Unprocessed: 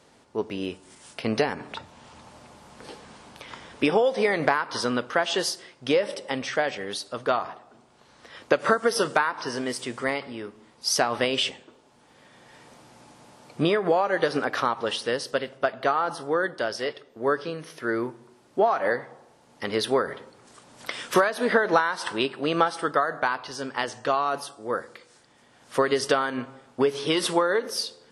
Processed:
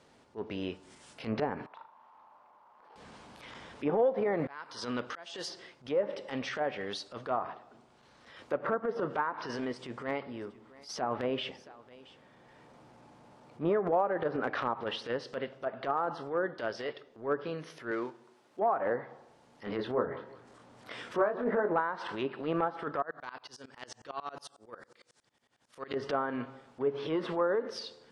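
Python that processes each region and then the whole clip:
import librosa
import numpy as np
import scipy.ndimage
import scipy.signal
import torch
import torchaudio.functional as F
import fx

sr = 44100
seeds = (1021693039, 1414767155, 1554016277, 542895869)

y = fx.chain(x, sr, fx.bandpass_q(hz=990.0, q=3.5),
    fx.room_flutter(wall_m=6.6, rt60_s=0.31), at=(1.66, 2.96))
y = fx.chain(y, sr, fx.high_shelf(hz=4600.0, db=10.5),
    fx.auto_swell(attack_ms=638.0), at=(4.37, 5.5))
y = fx.chain(y, sr, fx.high_shelf(hz=2100.0, db=-8.5),
    fx.echo_single(ms=676, db=-22.5), at=(9.65, 13.63))
y = fx.chain(y, sr, fx.dead_time(dead_ms=0.1),
    fx.highpass(hz=430.0, slope=6), at=(17.91, 18.59))
y = fx.chain(y, sr, fx.high_shelf(hz=2500.0, db=-9.0),
    fx.doubler(ms=24.0, db=-6.0),
    fx.echo_feedback(ms=184, feedback_pct=33, wet_db=-20.0), at=(19.63, 21.76))
y = fx.chain(y, sr, fx.peak_eq(hz=9300.0, db=7.0, octaves=2.7),
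    fx.tremolo_decay(direction='swelling', hz=11.0, depth_db=30), at=(23.02, 25.94))
y = fx.env_lowpass_down(y, sr, base_hz=1100.0, full_db=-19.5)
y = fx.high_shelf(y, sr, hz=7700.0, db=-9.5)
y = fx.transient(y, sr, attack_db=-12, sustain_db=0)
y = y * 10.0 ** (-3.5 / 20.0)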